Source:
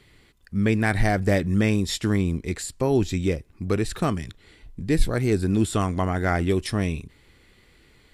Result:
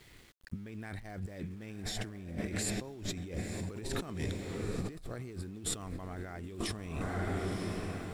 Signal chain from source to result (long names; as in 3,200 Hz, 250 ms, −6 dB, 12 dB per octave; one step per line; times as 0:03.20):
feedback delay with all-pass diffusion 969 ms, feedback 44%, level −12 dB
compressor whose output falls as the input rises −32 dBFS, ratio −1
centre clipping without the shift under −49 dBFS
level −8 dB